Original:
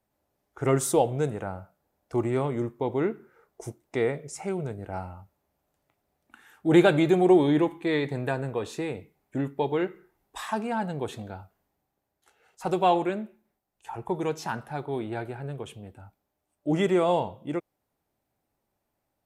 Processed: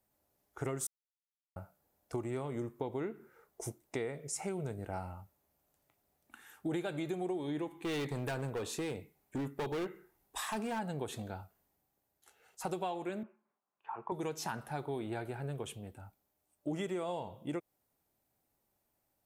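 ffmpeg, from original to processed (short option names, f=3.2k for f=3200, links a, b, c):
-filter_complex "[0:a]asplit=3[a][b][c];[a]afade=t=out:st=7.67:d=0.02[d];[b]asoftclip=type=hard:threshold=-27dB,afade=t=in:st=7.67:d=0.02,afade=t=out:st=10.78:d=0.02[e];[c]afade=t=in:st=10.78:d=0.02[f];[d][e][f]amix=inputs=3:normalize=0,asettb=1/sr,asplit=3[g][h][i];[g]atrim=end=13.234[j];[h]atrim=start=13.23:end=14.12,asetpts=PTS-STARTPTS,afade=t=in:d=0.004:c=qsin,afade=t=out:st=0.886:d=0.004:c=qsin,highpass=290,equalizer=f=320:t=q:w=4:g=-7,equalizer=f=500:t=q:w=4:g=-5,equalizer=f=740:t=q:w=4:g=-5,equalizer=f=1.1k:t=q:w=4:g=8,equalizer=f=1.9k:t=q:w=4:g=-6,lowpass=f=2.2k:w=0.5412,lowpass=f=2.2k:w=1.3066[k];[i]atrim=start=14.116[l];[j][k]acrossfade=d=0.004:c1=hsin:c2=qsin[m];[m][l]acrossfade=d=0.004:c1=qsin:c2=hsin,asplit=3[n][o][p];[n]atrim=end=0.87,asetpts=PTS-STARTPTS,afade=t=out:st=0.866:d=0.004:c=hsin[q];[o]atrim=start=0.87:end=1.56,asetpts=PTS-STARTPTS,volume=0[r];[p]atrim=start=1.56,asetpts=PTS-STARTPTS,afade=t=in:d=0.004:c=hsin[s];[q][r][s]concat=n=3:v=0:a=1,highshelf=f=6.1k:g=10,acompressor=threshold=-30dB:ratio=12,volume=-3.5dB"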